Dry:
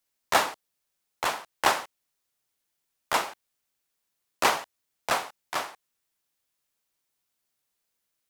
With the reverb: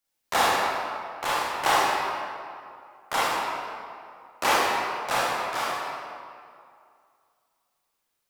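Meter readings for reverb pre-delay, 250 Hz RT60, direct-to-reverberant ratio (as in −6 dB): 25 ms, 2.2 s, −8.0 dB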